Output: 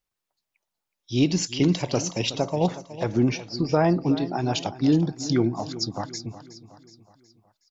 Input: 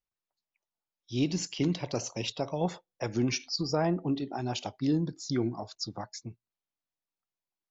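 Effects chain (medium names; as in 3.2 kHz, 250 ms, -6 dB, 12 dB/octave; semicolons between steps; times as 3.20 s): 2.42–3.73 s: low-pass 1.5 kHz 6 dB/octave; feedback delay 369 ms, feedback 49%, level -15 dB; trim +7.5 dB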